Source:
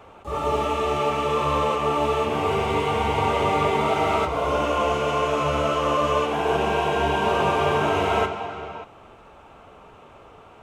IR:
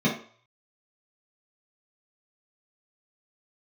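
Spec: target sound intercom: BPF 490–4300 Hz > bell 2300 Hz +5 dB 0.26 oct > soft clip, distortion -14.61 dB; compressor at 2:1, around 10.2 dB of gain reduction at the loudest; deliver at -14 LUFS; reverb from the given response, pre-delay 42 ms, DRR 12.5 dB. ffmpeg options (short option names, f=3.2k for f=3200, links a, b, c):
-filter_complex "[0:a]acompressor=threshold=-37dB:ratio=2,asplit=2[a][b];[1:a]atrim=start_sample=2205,adelay=42[c];[b][c]afir=irnorm=-1:irlink=0,volume=-25.5dB[d];[a][d]amix=inputs=2:normalize=0,highpass=490,lowpass=4.3k,equalizer=f=2.3k:t=o:w=0.26:g=5,asoftclip=threshold=-30dB,volume=22dB"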